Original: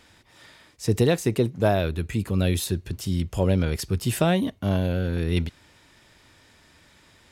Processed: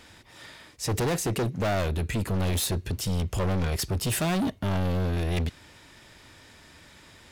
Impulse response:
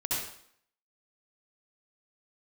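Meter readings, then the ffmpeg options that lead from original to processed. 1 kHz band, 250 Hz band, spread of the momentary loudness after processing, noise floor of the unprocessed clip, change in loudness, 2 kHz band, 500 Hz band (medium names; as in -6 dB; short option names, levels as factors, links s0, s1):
-1.0 dB, -4.5 dB, 7 LU, -57 dBFS, -3.0 dB, -1.5 dB, -5.5 dB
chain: -af "volume=25.1,asoftclip=hard,volume=0.0398,volume=1.58"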